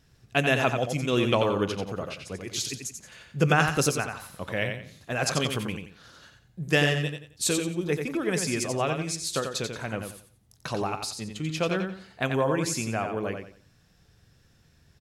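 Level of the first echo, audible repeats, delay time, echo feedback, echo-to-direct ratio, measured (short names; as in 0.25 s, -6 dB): -6.0 dB, 3, 89 ms, 29%, -5.5 dB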